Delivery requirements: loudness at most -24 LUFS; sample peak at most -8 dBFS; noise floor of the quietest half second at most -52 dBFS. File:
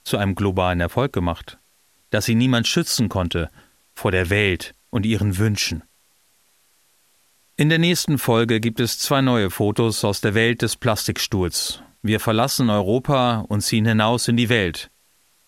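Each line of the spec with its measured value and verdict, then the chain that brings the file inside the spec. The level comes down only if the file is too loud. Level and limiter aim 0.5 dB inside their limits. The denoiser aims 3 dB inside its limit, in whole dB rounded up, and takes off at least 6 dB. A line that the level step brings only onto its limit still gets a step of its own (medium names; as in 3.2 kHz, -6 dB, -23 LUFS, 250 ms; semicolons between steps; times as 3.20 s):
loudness -20.0 LUFS: fail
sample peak -3.5 dBFS: fail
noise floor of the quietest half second -60 dBFS: pass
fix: trim -4.5 dB; peak limiter -8.5 dBFS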